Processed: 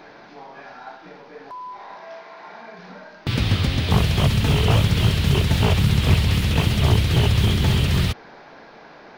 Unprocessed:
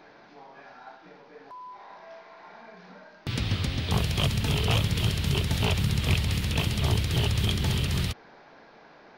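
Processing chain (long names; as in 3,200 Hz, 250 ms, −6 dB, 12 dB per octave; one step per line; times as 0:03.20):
0:01.95–0:02.79: high-pass filter 140 Hz 6 dB per octave
slew-rate limiting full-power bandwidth 69 Hz
level +8 dB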